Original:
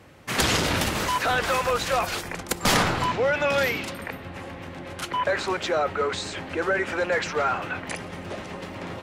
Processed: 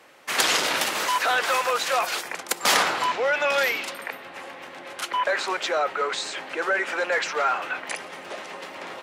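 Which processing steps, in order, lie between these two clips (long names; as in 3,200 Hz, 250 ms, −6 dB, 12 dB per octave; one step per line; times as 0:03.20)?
Bessel high-pass filter 610 Hz, order 2
level +2.5 dB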